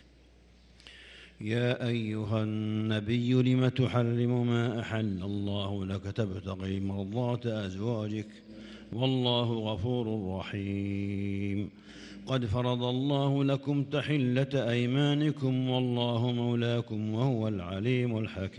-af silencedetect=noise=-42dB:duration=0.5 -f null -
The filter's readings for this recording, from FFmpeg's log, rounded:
silence_start: 0.00
silence_end: 0.80 | silence_duration: 0.80